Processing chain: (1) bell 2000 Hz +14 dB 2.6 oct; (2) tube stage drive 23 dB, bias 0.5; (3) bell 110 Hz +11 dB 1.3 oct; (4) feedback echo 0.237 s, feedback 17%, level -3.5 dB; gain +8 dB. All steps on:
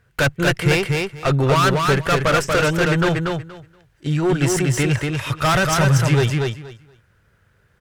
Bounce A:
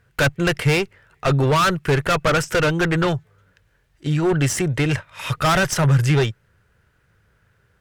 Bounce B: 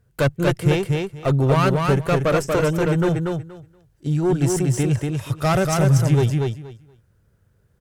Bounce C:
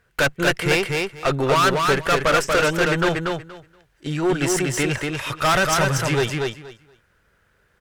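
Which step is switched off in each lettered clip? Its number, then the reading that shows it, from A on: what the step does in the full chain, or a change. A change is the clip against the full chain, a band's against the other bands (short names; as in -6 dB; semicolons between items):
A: 4, crest factor change -2.0 dB; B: 1, 2 kHz band -6.0 dB; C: 3, 125 Hz band -8.0 dB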